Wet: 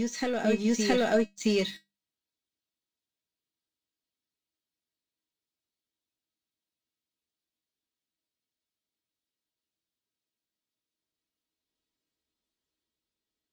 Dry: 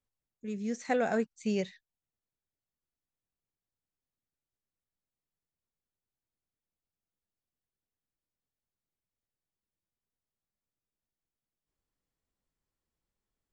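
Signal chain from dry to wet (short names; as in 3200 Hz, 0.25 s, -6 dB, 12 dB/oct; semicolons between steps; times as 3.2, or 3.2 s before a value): HPF 52 Hz; bell 3800 Hz +11.5 dB 1.4 oct; notches 50/100/150/200 Hz; sample leveller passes 2; compressor, threshold -24 dBFS, peak gain reduction 5 dB; resonator 320 Hz, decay 0.18 s, harmonics all, mix 80%; small resonant body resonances 250/420 Hz, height 7 dB, ringing for 30 ms; reverse echo 0.67 s -4 dB; gain +9 dB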